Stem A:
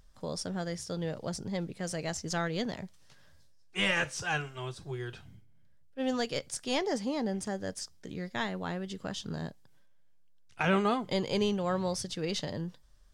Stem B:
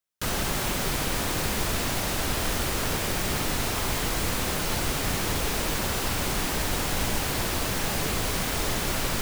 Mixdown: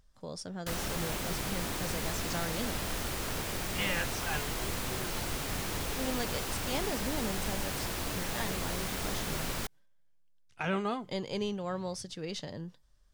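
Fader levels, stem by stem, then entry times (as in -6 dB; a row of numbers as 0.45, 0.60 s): -5.0, -8.0 dB; 0.00, 0.45 s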